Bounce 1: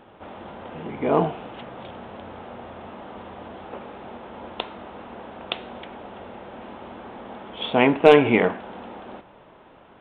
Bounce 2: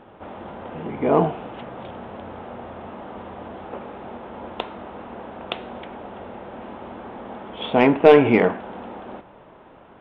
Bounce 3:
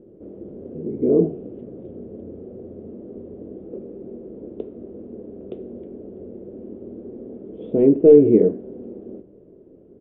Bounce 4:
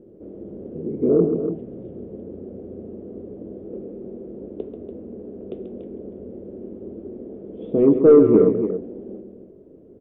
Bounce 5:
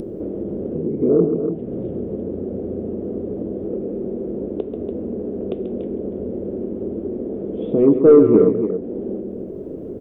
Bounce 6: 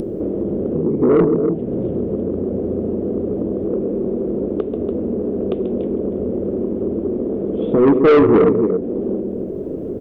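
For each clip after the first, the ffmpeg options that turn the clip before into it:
-filter_complex "[0:a]highshelf=f=3400:g=-10.5,asplit=2[s0][s1];[s1]acontrast=34,volume=1[s2];[s0][s2]amix=inputs=2:normalize=0,volume=0.501"
-af "firequalizer=gain_entry='entry(120,0);entry(400,8);entry(850,-29)':delay=0.05:min_phase=1,flanger=delay=5.8:depth=5.7:regen=-67:speed=0.25:shape=sinusoidal,volume=1.41"
-filter_complex "[0:a]asoftclip=type=tanh:threshold=0.708,asplit=2[s0][s1];[s1]aecho=0:1:137|288.6:0.355|0.355[s2];[s0][s2]amix=inputs=2:normalize=0"
-af "acompressor=mode=upward:threshold=0.126:ratio=2.5,volume=1.19"
-af "asoftclip=type=tanh:threshold=0.224,volume=1.88"

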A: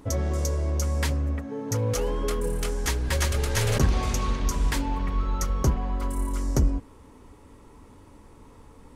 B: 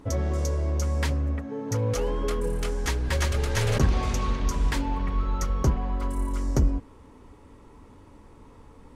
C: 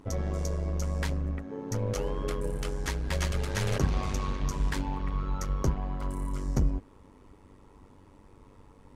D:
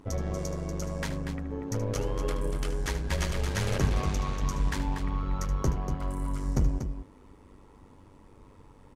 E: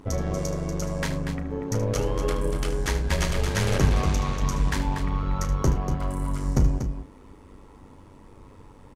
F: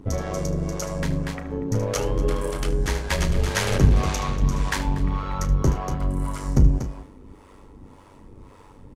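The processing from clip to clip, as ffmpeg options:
-af "highshelf=f=7200:g=-9"
-af "tremolo=f=97:d=0.71,volume=0.841"
-af "aecho=1:1:75.8|239.1:0.251|0.398"
-filter_complex "[0:a]asplit=2[s0][s1];[s1]adelay=34,volume=0.251[s2];[s0][s2]amix=inputs=2:normalize=0,volume=1.78"
-filter_complex "[0:a]acrossover=split=450[s0][s1];[s0]aeval=exprs='val(0)*(1-0.7/2+0.7/2*cos(2*PI*1.8*n/s))':c=same[s2];[s1]aeval=exprs='val(0)*(1-0.7/2-0.7/2*cos(2*PI*1.8*n/s))':c=same[s3];[s2][s3]amix=inputs=2:normalize=0,volume=1.78"

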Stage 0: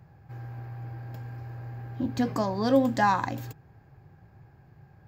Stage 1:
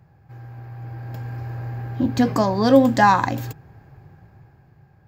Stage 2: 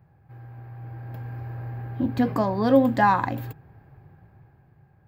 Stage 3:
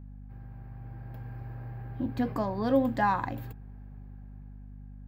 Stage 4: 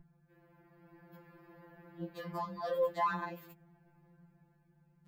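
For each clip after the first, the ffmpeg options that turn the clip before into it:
-af "dynaudnorm=f=200:g=11:m=3.55"
-af "equalizer=f=6200:t=o:w=0.94:g=-15,volume=0.631"
-af "aeval=exprs='val(0)+0.0141*(sin(2*PI*50*n/s)+sin(2*PI*2*50*n/s)/2+sin(2*PI*3*50*n/s)/3+sin(2*PI*4*50*n/s)/4+sin(2*PI*5*50*n/s)/5)':c=same,volume=0.447"
-af "afftfilt=real='re*2.83*eq(mod(b,8),0)':imag='im*2.83*eq(mod(b,8),0)':win_size=2048:overlap=0.75,volume=0.841"

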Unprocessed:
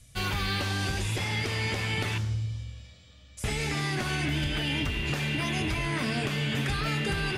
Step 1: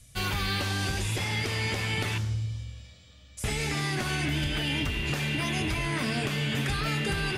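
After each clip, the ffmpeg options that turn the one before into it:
-af "highshelf=f=7900:g=4.5"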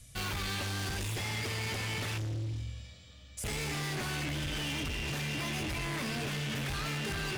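-af "asoftclip=type=hard:threshold=0.0211"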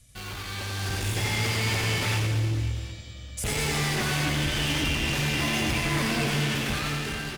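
-filter_complex "[0:a]dynaudnorm=f=260:g=7:m=3.16,asplit=2[s0][s1];[s1]aecho=0:1:90|202.5|343.1|518.9|738.6:0.631|0.398|0.251|0.158|0.1[s2];[s0][s2]amix=inputs=2:normalize=0,volume=0.708"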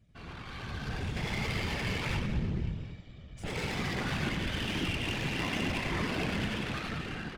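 -af "afftfilt=real='hypot(re,im)*cos(2*PI*random(0))':imag='hypot(re,im)*sin(2*PI*random(1))':win_size=512:overlap=0.75,adynamicsmooth=sensitivity=6.5:basefreq=2200"

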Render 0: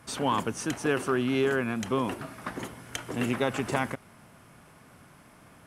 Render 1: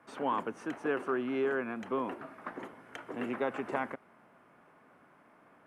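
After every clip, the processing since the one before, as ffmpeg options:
-filter_complex "[0:a]acrossover=split=220 2300:gain=0.112 1 0.112[s0][s1][s2];[s0][s1][s2]amix=inputs=3:normalize=0,volume=0.631"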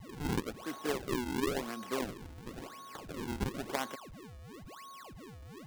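-af "aeval=exprs='val(0)+0.00708*sin(2*PI*1100*n/s)':c=same,acrusher=samples=42:mix=1:aa=0.000001:lfo=1:lforange=67.2:lforate=0.97,aeval=exprs='0.119*(cos(1*acos(clip(val(0)/0.119,-1,1)))-cos(1*PI/2))+0.0133*(cos(3*acos(clip(val(0)/0.119,-1,1)))-cos(3*PI/2))':c=same"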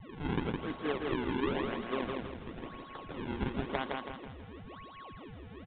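-filter_complex "[0:a]asplit=2[s0][s1];[s1]aecho=0:1:163|326|489|652|815:0.668|0.281|0.118|0.0495|0.0208[s2];[s0][s2]amix=inputs=2:normalize=0,aresample=8000,aresample=44100"

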